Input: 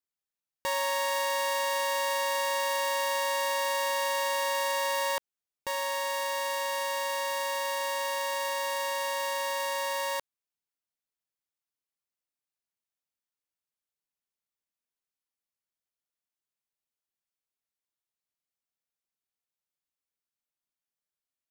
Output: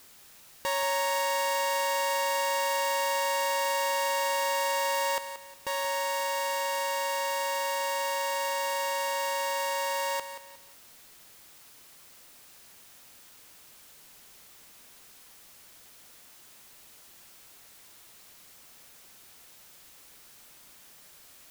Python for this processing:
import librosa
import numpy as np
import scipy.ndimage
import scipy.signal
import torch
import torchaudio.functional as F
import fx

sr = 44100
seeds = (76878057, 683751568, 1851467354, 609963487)

y = x + 0.5 * 10.0 ** (-45.0 / 20.0) * np.sign(x)
y = fx.echo_feedback(y, sr, ms=179, feedback_pct=32, wet_db=-11.0)